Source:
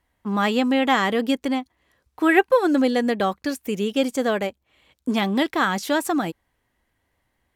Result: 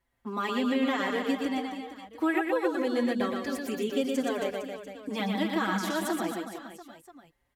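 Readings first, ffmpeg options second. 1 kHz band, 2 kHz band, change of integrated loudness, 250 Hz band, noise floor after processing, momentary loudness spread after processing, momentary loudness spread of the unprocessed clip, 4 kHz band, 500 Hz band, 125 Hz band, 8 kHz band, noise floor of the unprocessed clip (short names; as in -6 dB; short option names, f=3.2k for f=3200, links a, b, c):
-9.0 dB, -8.5 dB, -8.0 dB, -7.0 dB, -76 dBFS, 13 LU, 9 LU, -8.0 dB, -7.5 dB, -7.5 dB, -6.0 dB, -73 dBFS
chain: -filter_complex "[0:a]acompressor=threshold=-21dB:ratio=3,aecho=1:1:120|270|457.5|691.9|984.8:0.631|0.398|0.251|0.158|0.1,asplit=2[a][b];[b]adelay=5.4,afreqshift=0.29[c];[a][c]amix=inputs=2:normalize=1,volume=-3.5dB"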